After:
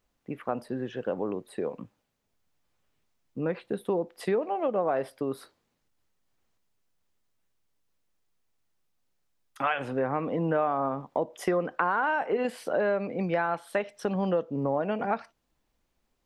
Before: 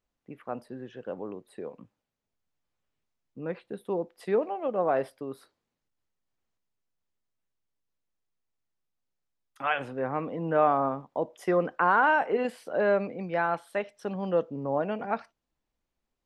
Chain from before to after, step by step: compression 4:1, threshold -33 dBFS, peak gain reduction 13.5 dB; trim +8 dB

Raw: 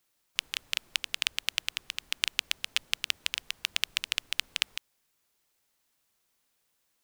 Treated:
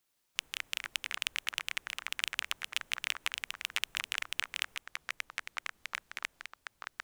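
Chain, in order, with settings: ever faster or slower copies 82 ms, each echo -5 st, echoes 3, each echo -6 dB; dynamic bell 4.5 kHz, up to -6 dB, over -49 dBFS, Q 2.2; trim -4 dB

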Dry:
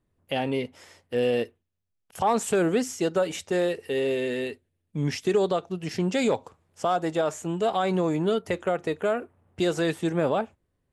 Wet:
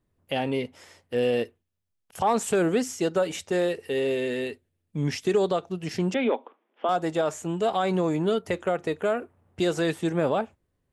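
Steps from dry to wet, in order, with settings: 6.14–6.89 s: Chebyshev band-pass 230–3400 Hz, order 5

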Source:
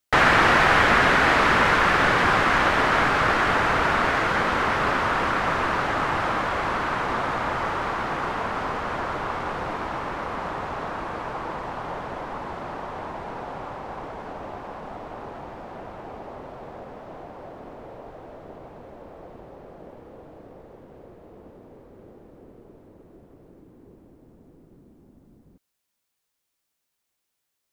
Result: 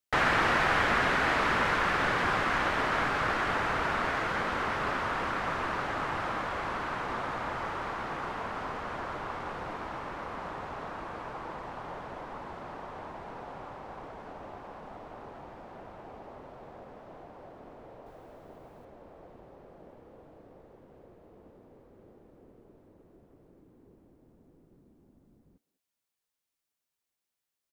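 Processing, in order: 18.06–18.85 s: treble shelf 7.3 kHz +11.5 dB; speakerphone echo 200 ms, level -18 dB; trim -8.5 dB

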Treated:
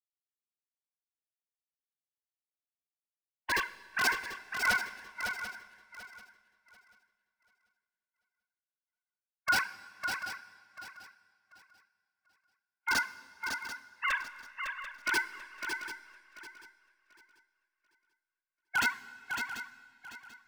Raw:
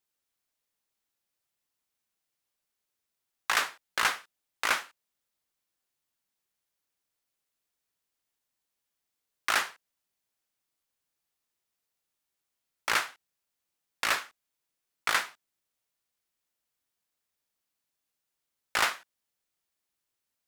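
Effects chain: formants replaced by sine waves; band-stop 1 kHz, Q 12; integer overflow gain 20.5 dB; shuffle delay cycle 739 ms, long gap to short 3:1, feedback 38%, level -4.5 dB; algorithmic reverb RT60 2.8 s, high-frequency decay 0.95×, pre-delay 0 ms, DRR 9.5 dB; spectral contrast expander 1.5:1

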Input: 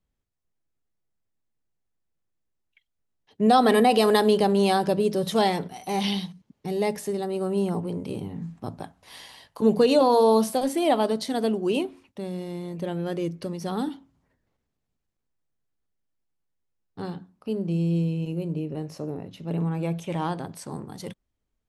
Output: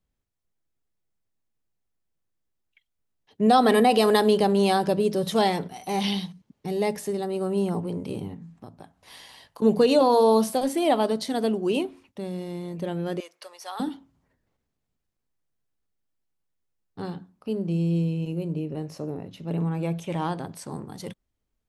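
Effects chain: 8.34–9.62 s: compression 3:1, threshold -43 dBFS, peak gain reduction 12.5 dB; 13.20–13.80 s: high-pass 700 Hz 24 dB/octave

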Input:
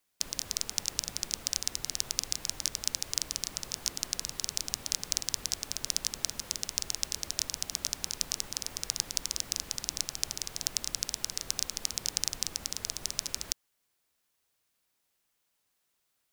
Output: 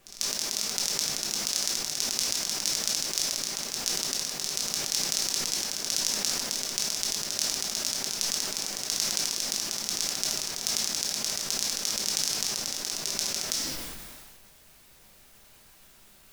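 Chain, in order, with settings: high-pass 210 Hz 12 dB/octave; reverse; upward compressor, threshold -43 dBFS; reverse; added noise pink -67 dBFS; on a send: reverse echo 444 ms -15.5 dB; on the sum: simulated room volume 270 m³, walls mixed, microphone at 1.2 m; decay stretcher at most 29 dB/s

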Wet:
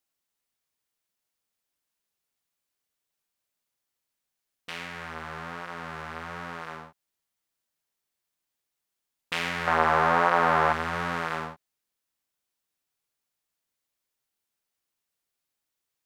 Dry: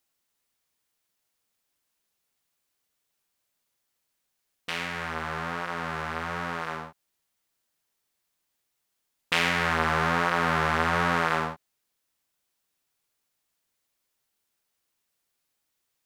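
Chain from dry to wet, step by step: 9.67–10.73 s: peaking EQ 740 Hz +12 dB 2.3 oct; trim -5.5 dB

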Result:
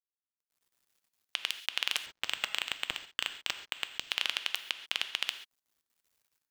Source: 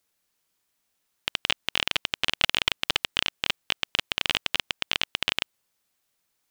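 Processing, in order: cycle switcher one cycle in 2, muted; high-pass 1.1 kHz 6 dB/octave; level held to a coarse grid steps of 10 dB; peak limiter -13 dBFS, peak gain reduction 7 dB; level rider gain up to 11.5 dB; word length cut 10-bit, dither none; gated-style reverb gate 160 ms flat, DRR 9 dB; 2.06–4.11 s: decimation joined by straight lines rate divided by 4×; trim -7 dB

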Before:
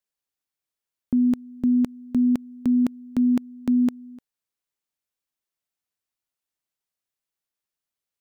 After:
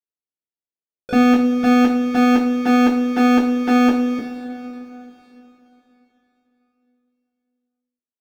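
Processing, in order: inverse Chebyshev low-pass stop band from 1.2 kHz, stop band 40 dB; bass shelf 130 Hz -6.5 dB; waveshaping leveller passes 5; two-slope reverb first 0.31 s, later 3.6 s, from -18 dB, DRR -5.5 dB; harmony voices +12 st -11 dB

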